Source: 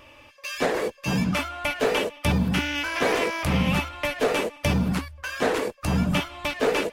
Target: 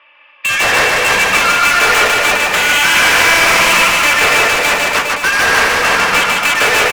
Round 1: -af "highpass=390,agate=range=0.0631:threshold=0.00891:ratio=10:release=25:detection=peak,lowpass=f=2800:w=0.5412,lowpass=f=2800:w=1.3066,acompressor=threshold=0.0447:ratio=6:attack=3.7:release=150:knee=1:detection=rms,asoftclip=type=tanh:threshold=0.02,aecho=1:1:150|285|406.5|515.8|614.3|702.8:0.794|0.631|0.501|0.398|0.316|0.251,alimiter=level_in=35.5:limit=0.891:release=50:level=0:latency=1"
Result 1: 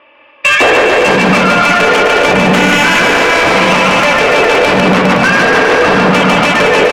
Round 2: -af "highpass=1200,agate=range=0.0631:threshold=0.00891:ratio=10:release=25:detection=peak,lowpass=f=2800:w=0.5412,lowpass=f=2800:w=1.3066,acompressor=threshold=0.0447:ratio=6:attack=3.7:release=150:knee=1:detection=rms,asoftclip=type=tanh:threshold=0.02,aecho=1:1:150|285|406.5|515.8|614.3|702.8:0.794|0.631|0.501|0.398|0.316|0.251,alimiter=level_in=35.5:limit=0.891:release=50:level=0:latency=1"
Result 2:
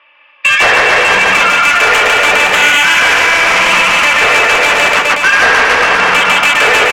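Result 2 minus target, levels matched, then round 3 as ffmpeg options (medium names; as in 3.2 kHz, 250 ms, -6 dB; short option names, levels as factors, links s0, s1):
saturation: distortion -5 dB
-af "highpass=1200,agate=range=0.0631:threshold=0.00891:ratio=10:release=25:detection=peak,lowpass=f=2800:w=0.5412,lowpass=f=2800:w=1.3066,acompressor=threshold=0.0447:ratio=6:attack=3.7:release=150:knee=1:detection=rms,asoftclip=type=tanh:threshold=0.00668,aecho=1:1:150|285|406.5|515.8|614.3|702.8:0.794|0.631|0.501|0.398|0.316|0.251,alimiter=level_in=35.5:limit=0.891:release=50:level=0:latency=1"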